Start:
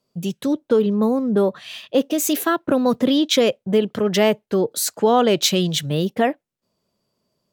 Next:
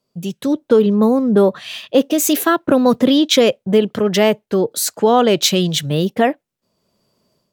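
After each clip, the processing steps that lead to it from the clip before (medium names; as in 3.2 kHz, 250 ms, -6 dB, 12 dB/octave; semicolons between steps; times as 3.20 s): level rider gain up to 9 dB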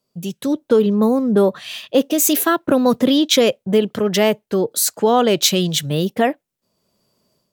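treble shelf 6.7 kHz +6 dB; trim -2 dB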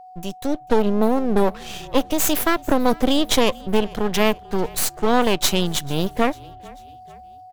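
half-wave rectifier; whistle 740 Hz -40 dBFS; frequency-shifting echo 443 ms, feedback 50%, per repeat -35 Hz, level -23 dB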